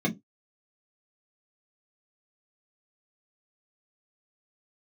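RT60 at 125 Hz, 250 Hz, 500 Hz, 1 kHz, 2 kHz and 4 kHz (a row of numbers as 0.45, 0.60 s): 0.20, 0.20, 0.20, 0.15, 0.10, 0.15 s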